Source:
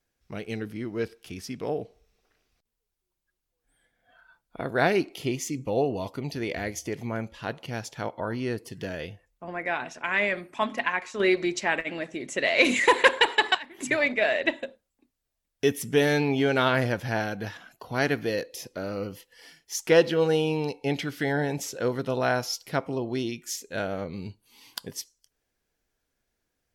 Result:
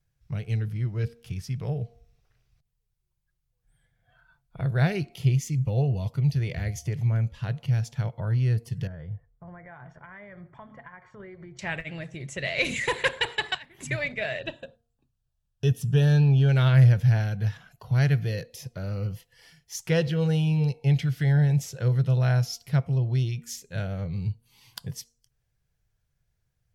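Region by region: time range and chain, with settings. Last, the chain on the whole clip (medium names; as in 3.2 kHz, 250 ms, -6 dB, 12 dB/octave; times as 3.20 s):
8.87–11.59 s: compression 2.5:1, threshold -41 dBFS + Savitzky-Golay filter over 41 samples
14.39–16.49 s: Butterworth band-stop 2.1 kHz, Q 3.1 + treble shelf 7.1 kHz -7.5 dB
whole clip: resonant low shelf 190 Hz +12 dB, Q 3; de-hum 234.1 Hz, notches 3; dynamic bell 980 Hz, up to -6 dB, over -41 dBFS, Q 1.4; trim -4 dB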